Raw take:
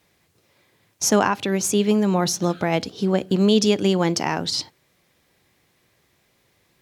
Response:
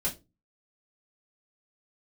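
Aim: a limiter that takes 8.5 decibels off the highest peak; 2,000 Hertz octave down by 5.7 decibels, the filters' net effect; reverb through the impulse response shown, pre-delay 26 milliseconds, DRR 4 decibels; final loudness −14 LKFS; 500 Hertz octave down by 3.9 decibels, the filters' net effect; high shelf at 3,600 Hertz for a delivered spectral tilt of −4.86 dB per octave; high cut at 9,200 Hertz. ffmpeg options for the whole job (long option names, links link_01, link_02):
-filter_complex "[0:a]lowpass=9200,equalizer=frequency=500:width_type=o:gain=-5,equalizer=frequency=2000:width_type=o:gain=-8.5,highshelf=frequency=3600:gain=3.5,alimiter=limit=-15dB:level=0:latency=1,asplit=2[link_01][link_02];[1:a]atrim=start_sample=2205,adelay=26[link_03];[link_02][link_03]afir=irnorm=-1:irlink=0,volume=-9dB[link_04];[link_01][link_04]amix=inputs=2:normalize=0,volume=8dB"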